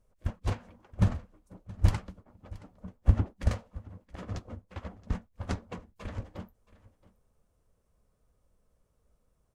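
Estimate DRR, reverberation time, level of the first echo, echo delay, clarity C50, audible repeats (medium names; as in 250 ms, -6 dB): no reverb, no reverb, -20.5 dB, 673 ms, no reverb, 1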